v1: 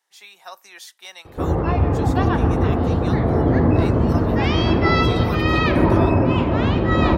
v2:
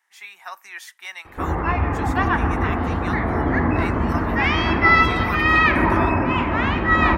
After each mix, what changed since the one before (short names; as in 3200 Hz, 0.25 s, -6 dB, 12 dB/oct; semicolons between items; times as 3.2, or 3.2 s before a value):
master: add graphic EQ 125/500/1000/2000/4000 Hz -9/-8/+4/+10/-6 dB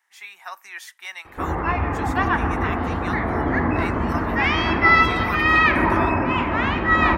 master: add low shelf 220 Hz -3.5 dB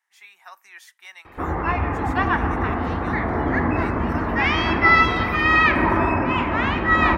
speech -7.5 dB